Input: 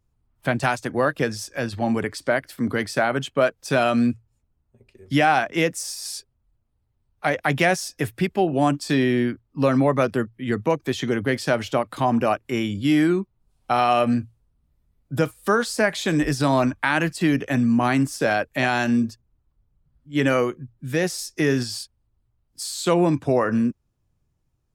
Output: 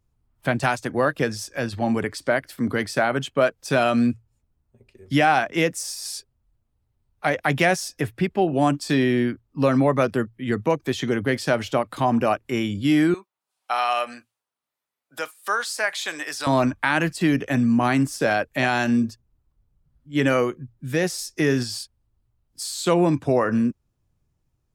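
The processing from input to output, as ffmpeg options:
-filter_complex "[0:a]asettb=1/sr,asplit=3[s0][s1][s2];[s0]atrim=end=8.014[s3];[s1]atrim=start=8.01:end=8.42,asetpts=PTS-STARTPTS,afade=t=in:d=0.004:c=qsin,afade=t=out:st=0.406:d=0.004:c=qsin,highshelf=f=4400:g=-8.5[s4];[s2]atrim=start=8.416[s5];[s3][s4]acrossfade=d=0.004:c1=hsin:c2=qsin[s6];[s6][s5]acrossfade=d=0.004:c1=qsin:c2=hsin,asettb=1/sr,asplit=3[s7][s8][s9];[s7]atrim=end=13.144[s10];[s8]atrim=start=13.14:end=16.47,asetpts=PTS-STARTPTS,afade=t=in:d=0.004:c=qsin,afade=t=out:st=3.326:d=0.004:c=qsin,highpass=870[s11];[s9]atrim=start=16.466[s12];[s10][s11]acrossfade=d=0.004:c1=hsin:c2=qsin[s13];[s13][s12]acrossfade=d=0.004:c1=qsin:c2=hsin"

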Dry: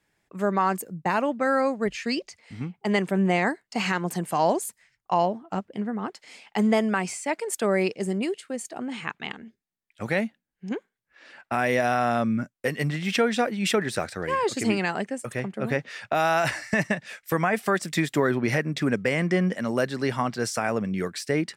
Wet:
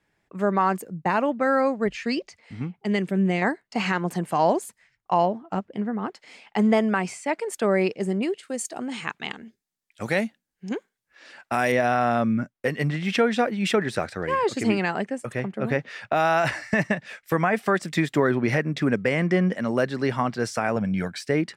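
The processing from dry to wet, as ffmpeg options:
-filter_complex "[0:a]asettb=1/sr,asplit=3[s0][s1][s2];[s0]atrim=end=2.844[s3];[s1]atrim=start=2.84:end=3.42,asetpts=PTS-STARTPTS,afade=t=in:d=0.004:c=qsin,afade=t=out:st=0.576:d=0.004:c=qsin,equalizer=f=940:t=o:w=1.5:g=-11[s4];[s2]atrim=start=3.416[s5];[s3][s4]acrossfade=d=0.004:c1=hsin:c2=qsin[s6];[s6][s5]acrossfade=d=0.004:c1=qsin:c2=hsin,asettb=1/sr,asplit=3[s7][s8][s9];[s7]atrim=end=8.434[s10];[s8]atrim=start=8.43:end=11.72,asetpts=PTS-STARTPTS,afade=t=in:d=0.004:c=qsin,afade=t=out:st=3.286:d=0.004:c=qsin,bass=f=250:g=-2,treble=f=4000:g=12[s11];[s9]atrim=start=11.716[s12];[s10][s11]acrossfade=d=0.004:c1=hsin:c2=qsin[s13];[s13][s12]acrossfade=d=0.004:c1=qsin:c2=hsin,asettb=1/sr,asplit=3[s14][s15][s16];[s14]atrim=end=20.764[s17];[s15]atrim=start=20.76:end=21.22,asetpts=PTS-STARTPTS,afade=t=in:d=0.004:c=qsin,afade=t=out:st=0.456:d=0.004:c=qsin,aecho=1:1:1.3:0.63,atrim=end_sample=20286[s18];[s16]atrim=start=21.216[s19];[s17][s18]acrossfade=d=0.004:c1=hsin:c2=qsin[s20];[s20][s19]acrossfade=d=0.004:c1=qsin:c2=hsin,aemphasis=mode=reproduction:type=cd,volume=1.19"

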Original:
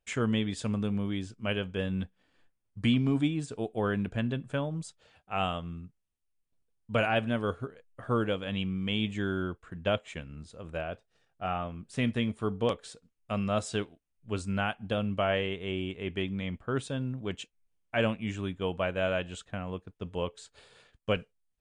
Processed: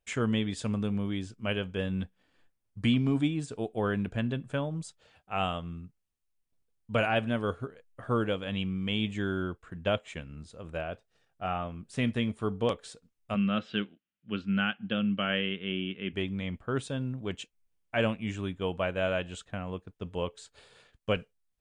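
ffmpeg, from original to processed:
-filter_complex "[0:a]asplit=3[s0][s1][s2];[s0]afade=t=out:st=13.34:d=0.02[s3];[s1]highpass=180,equalizer=f=200:t=q:w=4:g=8,equalizer=f=430:t=q:w=4:g=-5,equalizer=f=670:t=q:w=4:g=-10,equalizer=f=950:t=q:w=4:g=-9,equalizer=f=1500:t=q:w=4:g=4,equalizer=f=3000:t=q:w=4:g=7,lowpass=f=3500:w=0.5412,lowpass=f=3500:w=1.3066,afade=t=in:st=13.34:d=0.02,afade=t=out:st=16.12:d=0.02[s4];[s2]afade=t=in:st=16.12:d=0.02[s5];[s3][s4][s5]amix=inputs=3:normalize=0"

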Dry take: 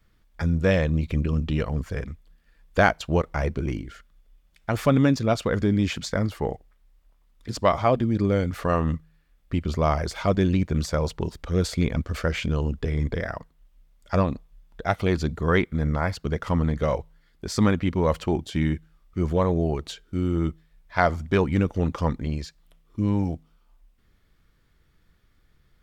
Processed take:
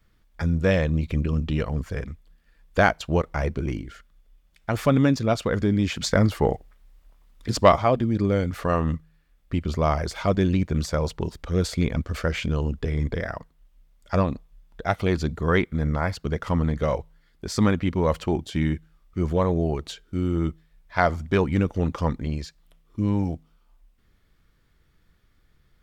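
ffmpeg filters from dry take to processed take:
-filter_complex "[0:a]asettb=1/sr,asplit=3[s0][s1][s2];[s0]atrim=end=6.004[s3];[s1]atrim=start=6:end=7.76,asetpts=PTS-STARTPTS,afade=t=in:d=0.004:c=qsin,afade=t=out:st=1.756:d=0.004:c=qsin,acontrast=49[s4];[s2]atrim=start=7.756[s5];[s3][s4]acrossfade=d=0.004:c1=hsin:c2=qsin[s6];[s6][s5]acrossfade=d=0.004:c1=qsin:c2=hsin"

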